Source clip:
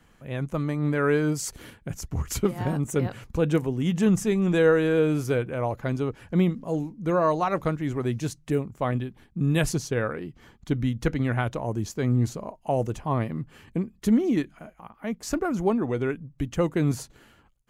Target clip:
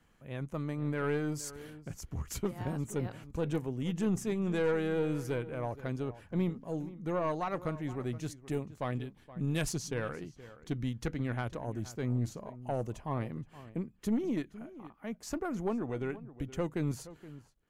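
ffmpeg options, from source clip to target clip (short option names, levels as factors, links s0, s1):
-filter_complex "[0:a]asettb=1/sr,asplit=3[s0][s1][s2];[s0]atrim=end=8.374[s3];[s1]atrim=start=8.37:end=11.06,asetpts=PTS-STARTPTS,afade=t=in:d=0.004:c=qsin,afade=t=out:st=2.686:d=0.004:c=qsin,equalizer=f=6100:t=o:w=2.4:g=4.5[s4];[s2]atrim=start=11.056[s5];[s3][s4]acrossfade=d=0.004:c1=hsin:c2=qsin[s6];[s6][s5]acrossfade=d=0.004:c1=qsin:c2=hsin,aeval=exprs='(tanh(5.62*val(0)+0.35)-tanh(0.35))/5.62':c=same,asplit=2[s7][s8];[s8]adelay=472.3,volume=0.158,highshelf=f=4000:g=-10.6[s9];[s7][s9]amix=inputs=2:normalize=0,volume=0.398"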